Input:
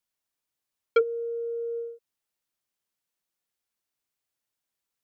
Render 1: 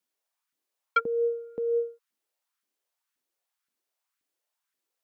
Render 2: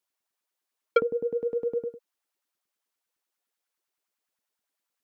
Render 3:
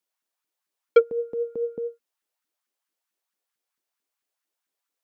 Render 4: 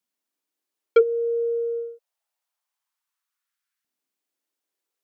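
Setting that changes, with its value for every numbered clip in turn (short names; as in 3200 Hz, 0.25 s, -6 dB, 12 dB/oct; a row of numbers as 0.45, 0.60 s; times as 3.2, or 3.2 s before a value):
LFO high-pass, rate: 1.9, 9.8, 4.5, 0.26 Hz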